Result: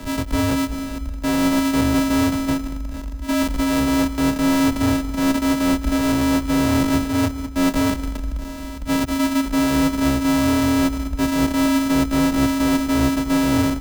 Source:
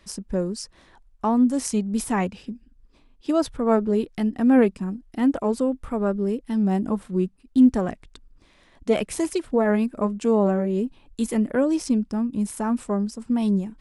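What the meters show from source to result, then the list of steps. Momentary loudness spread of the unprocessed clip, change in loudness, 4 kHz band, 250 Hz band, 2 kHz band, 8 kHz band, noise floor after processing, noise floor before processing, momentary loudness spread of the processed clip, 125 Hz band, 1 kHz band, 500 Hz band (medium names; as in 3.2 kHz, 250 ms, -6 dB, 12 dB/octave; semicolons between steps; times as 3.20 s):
11 LU, +3.5 dB, +13.5 dB, +4.0 dB, +10.5 dB, +7.0 dB, -30 dBFS, -58 dBFS, 8 LU, +6.5 dB, +5.5 dB, -2.0 dB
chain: sorted samples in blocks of 128 samples; peaking EQ 110 Hz -13 dB 0.41 oct; reverse; compression, threshold -27 dBFS, peak gain reduction 15 dB; reverse; power-law waveshaper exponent 0.35; frequency shift -73 Hz; on a send: feedback delay 210 ms, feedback 59%, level -14.5 dB; on the sum: three bands expanded up and down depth 40%; trim +2.5 dB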